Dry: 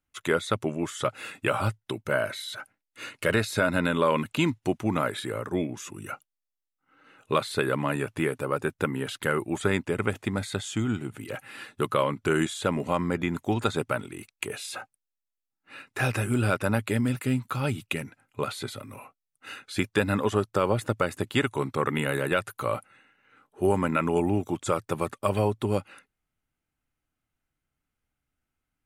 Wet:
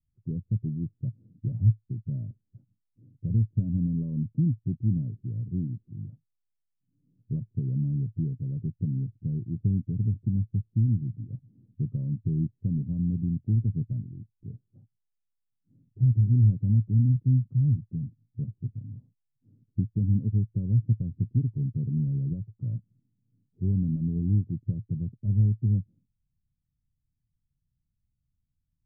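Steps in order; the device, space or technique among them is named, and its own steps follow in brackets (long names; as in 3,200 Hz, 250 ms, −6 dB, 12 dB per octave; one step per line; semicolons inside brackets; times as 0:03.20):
the neighbour's flat through the wall (low-pass filter 180 Hz 24 dB per octave; parametric band 120 Hz +3 dB)
level +6 dB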